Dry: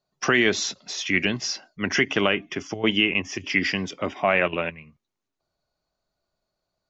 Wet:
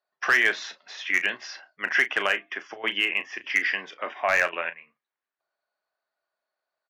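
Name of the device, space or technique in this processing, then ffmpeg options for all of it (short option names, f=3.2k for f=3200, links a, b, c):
megaphone: -filter_complex "[0:a]highpass=680,lowpass=2.8k,equalizer=f=1.7k:t=o:w=0.36:g=8,asoftclip=type=hard:threshold=-11dB,asplit=2[a][b];[b]adelay=35,volume=-12dB[c];[a][c]amix=inputs=2:normalize=0,volume=-1dB"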